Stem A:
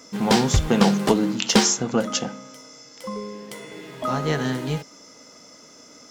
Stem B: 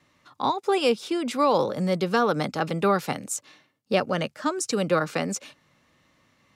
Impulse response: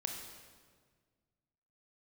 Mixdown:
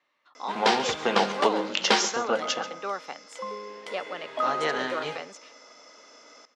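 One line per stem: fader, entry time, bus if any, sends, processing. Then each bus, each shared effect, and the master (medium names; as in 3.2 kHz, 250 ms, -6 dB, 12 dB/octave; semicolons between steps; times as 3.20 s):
+1.0 dB, 0.35 s, no send, echo send -15 dB, none
-7.5 dB, 0.00 s, no send, no echo send, none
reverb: none
echo: delay 137 ms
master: band-pass 540–4000 Hz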